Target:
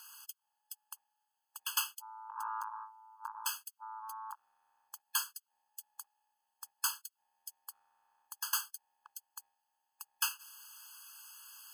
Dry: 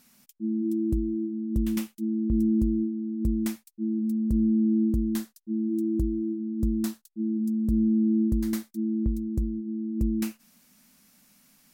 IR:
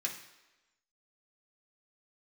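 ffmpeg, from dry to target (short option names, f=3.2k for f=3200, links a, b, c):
-filter_complex "[0:a]asubboost=boost=5.5:cutoff=200,asplit=3[a][b][c];[a]afade=t=out:st=1.89:d=0.02[d];[b]aeval=exprs='(tanh(10*val(0)+0.2)-tanh(0.2))/10':c=same,afade=t=in:st=1.89:d=0.02,afade=t=out:st=4.33:d=0.02[e];[c]afade=t=in:st=4.33:d=0.02[f];[d][e][f]amix=inputs=3:normalize=0,afftfilt=real='re*eq(mod(floor(b*sr/1024/860),2),1)':imag='im*eq(mod(floor(b*sr/1024/860),2),1)':win_size=1024:overlap=0.75,volume=11dB"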